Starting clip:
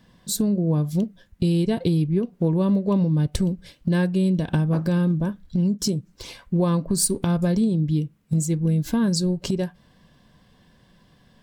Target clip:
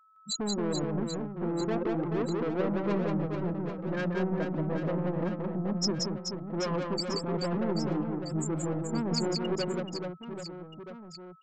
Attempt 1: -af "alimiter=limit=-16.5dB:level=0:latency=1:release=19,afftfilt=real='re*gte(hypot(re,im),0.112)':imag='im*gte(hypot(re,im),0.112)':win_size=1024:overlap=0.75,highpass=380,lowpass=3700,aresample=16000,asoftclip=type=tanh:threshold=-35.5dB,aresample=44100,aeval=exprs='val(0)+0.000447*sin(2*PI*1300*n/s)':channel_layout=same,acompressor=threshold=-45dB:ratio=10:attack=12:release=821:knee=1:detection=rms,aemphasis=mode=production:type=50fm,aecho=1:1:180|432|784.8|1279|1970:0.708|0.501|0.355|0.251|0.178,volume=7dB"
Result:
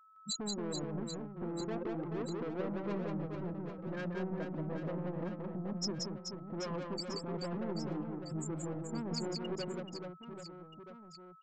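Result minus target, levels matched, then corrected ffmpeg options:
downward compressor: peak gain reduction +8.5 dB
-af "alimiter=limit=-16.5dB:level=0:latency=1:release=19,afftfilt=real='re*gte(hypot(re,im),0.112)':imag='im*gte(hypot(re,im),0.112)':win_size=1024:overlap=0.75,highpass=380,lowpass=3700,aresample=16000,asoftclip=type=tanh:threshold=-35.5dB,aresample=44100,aeval=exprs='val(0)+0.000447*sin(2*PI*1300*n/s)':channel_layout=same,aemphasis=mode=production:type=50fm,aecho=1:1:180|432|784.8|1279|1970:0.708|0.501|0.355|0.251|0.178,volume=7dB"

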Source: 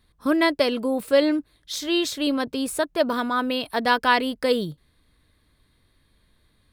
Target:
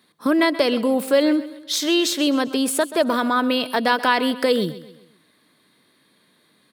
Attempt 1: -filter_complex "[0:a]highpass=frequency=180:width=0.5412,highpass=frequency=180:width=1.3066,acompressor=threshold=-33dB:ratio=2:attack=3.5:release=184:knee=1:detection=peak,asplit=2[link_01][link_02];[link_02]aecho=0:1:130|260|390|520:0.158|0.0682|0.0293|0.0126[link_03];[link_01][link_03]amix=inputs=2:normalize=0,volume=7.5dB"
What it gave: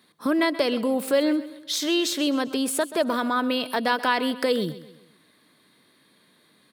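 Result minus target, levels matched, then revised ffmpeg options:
downward compressor: peak gain reduction +4 dB
-filter_complex "[0:a]highpass=frequency=180:width=0.5412,highpass=frequency=180:width=1.3066,acompressor=threshold=-24.5dB:ratio=2:attack=3.5:release=184:knee=1:detection=peak,asplit=2[link_01][link_02];[link_02]aecho=0:1:130|260|390|520:0.158|0.0682|0.0293|0.0126[link_03];[link_01][link_03]amix=inputs=2:normalize=0,volume=7.5dB"

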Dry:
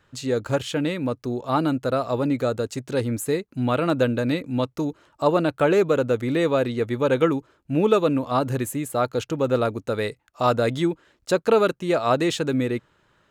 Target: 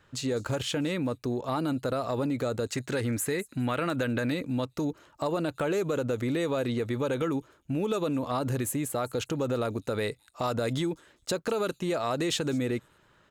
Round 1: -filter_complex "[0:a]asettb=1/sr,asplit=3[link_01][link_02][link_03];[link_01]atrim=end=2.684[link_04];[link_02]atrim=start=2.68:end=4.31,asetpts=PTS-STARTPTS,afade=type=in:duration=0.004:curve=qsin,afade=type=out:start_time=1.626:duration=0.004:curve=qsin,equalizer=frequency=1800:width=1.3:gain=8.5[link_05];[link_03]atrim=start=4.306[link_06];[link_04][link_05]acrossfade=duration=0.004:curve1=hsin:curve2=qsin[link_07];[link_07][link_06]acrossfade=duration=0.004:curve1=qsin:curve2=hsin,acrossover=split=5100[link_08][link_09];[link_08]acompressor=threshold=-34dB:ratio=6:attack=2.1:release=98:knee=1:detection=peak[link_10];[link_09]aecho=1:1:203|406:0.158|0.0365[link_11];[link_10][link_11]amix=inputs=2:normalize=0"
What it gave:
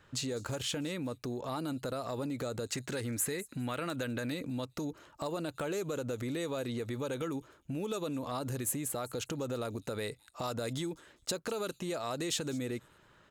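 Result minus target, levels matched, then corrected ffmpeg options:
downward compressor: peak gain reduction +7.5 dB
-filter_complex "[0:a]asettb=1/sr,asplit=3[link_01][link_02][link_03];[link_01]atrim=end=2.684[link_04];[link_02]atrim=start=2.68:end=4.31,asetpts=PTS-STARTPTS,afade=type=in:duration=0.004:curve=qsin,afade=type=out:start_time=1.626:duration=0.004:curve=qsin,equalizer=frequency=1800:width=1.3:gain=8.5[link_05];[link_03]atrim=start=4.306[link_06];[link_04][link_05]acrossfade=duration=0.004:curve1=hsin:curve2=qsin[link_07];[link_07][link_06]acrossfade=duration=0.004:curve1=qsin:curve2=hsin,acrossover=split=5100[link_08][link_09];[link_08]acompressor=threshold=-25dB:ratio=6:attack=2.1:release=98:knee=1:detection=peak[link_10];[link_09]aecho=1:1:203|406:0.158|0.0365[link_11];[link_10][link_11]amix=inputs=2:normalize=0"

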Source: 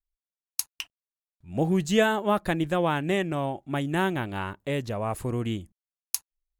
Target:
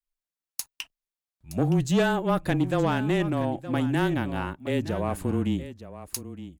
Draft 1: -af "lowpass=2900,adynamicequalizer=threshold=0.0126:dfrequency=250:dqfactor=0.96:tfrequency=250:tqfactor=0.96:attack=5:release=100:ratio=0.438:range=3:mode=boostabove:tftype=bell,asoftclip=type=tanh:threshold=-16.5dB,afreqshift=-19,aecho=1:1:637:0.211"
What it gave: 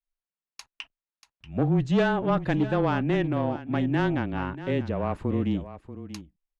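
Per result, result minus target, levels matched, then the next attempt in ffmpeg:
echo 281 ms early; 4,000 Hz band −4.0 dB
-af "lowpass=2900,adynamicequalizer=threshold=0.0126:dfrequency=250:dqfactor=0.96:tfrequency=250:tqfactor=0.96:attack=5:release=100:ratio=0.438:range=3:mode=boostabove:tftype=bell,asoftclip=type=tanh:threshold=-16.5dB,afreqshift=-19,aecho=1:1:918:0.211"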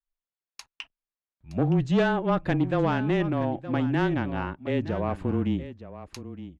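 4,000 Hz band −4.0 dB
-af "adynamicequalizer=threshold=0.0126:dfrequency=250:dqfactor=0.96:tfrequency=250:tqfactor=0.96:attack=5:release=100:ratio=0.438:range=3:mode=boostabove:tftype=bell,asoftclip=type=tanh:threshold=-16.5dB,afreqshift=-19,aecho=1:1:918:0.211"

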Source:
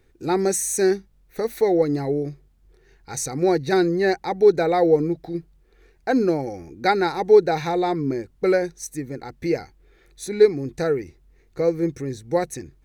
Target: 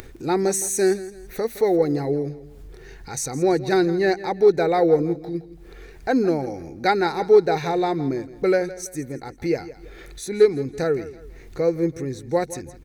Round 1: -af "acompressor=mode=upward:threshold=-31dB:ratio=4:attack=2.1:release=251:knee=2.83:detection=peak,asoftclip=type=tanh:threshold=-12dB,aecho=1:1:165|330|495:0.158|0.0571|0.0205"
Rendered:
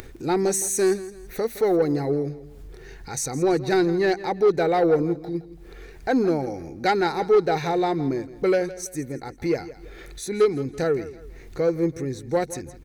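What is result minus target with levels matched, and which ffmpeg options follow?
soft clipping: distortion +16 dB
-af "acompressor=mode=upward:threshold=-31dB:ratio=4:attack=2.1:release=251:knee=2.83:detection=peak,asoftclip=type=tanh:threshold=-1.5dB,aecho=1:1:165|330|495:0.158|0.0571|0.0205"

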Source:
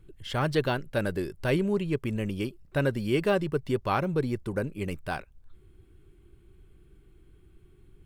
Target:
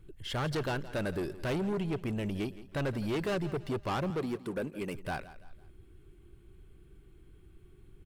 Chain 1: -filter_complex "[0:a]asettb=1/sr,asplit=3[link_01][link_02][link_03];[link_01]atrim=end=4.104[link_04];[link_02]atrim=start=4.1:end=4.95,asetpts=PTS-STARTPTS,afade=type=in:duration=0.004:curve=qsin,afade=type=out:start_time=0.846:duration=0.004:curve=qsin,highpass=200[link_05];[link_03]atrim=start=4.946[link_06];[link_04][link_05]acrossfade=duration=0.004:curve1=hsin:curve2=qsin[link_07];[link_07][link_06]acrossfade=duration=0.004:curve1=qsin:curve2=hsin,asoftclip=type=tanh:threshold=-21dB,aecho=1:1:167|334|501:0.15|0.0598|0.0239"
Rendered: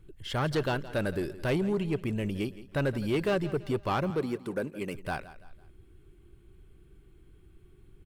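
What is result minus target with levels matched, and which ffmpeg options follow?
soft clipping: distortion −7 dB
-filter_complex "[0:a]asettb=1/sr,asplit=3[link_01][link_02][link_03];[link_01]atrim=end=4.104[link_04];[link_02]atrim=start=4.1:end=4.95,asetpts=PTS-STARTPTS,afade=type=in:duration=0.004:curve=qsin,afade=type=out:start_time=0.846:duration=0.004:curve=qsin,highpass=200[link_05];[link_03]atrim=start=4.946[link_06];[link_04][link_05]acrossfade=duration=0.004:curve1=hsin:curve2=qsin[link_07];[link_07][link_06]acrossfade=duration=0.004:curve1=qsin:curve2=hsin,asoftclip=type=tanh:threshold=-28.5dB,aecho=1:1:167|334|501:0.15|0.0598|0.0239"

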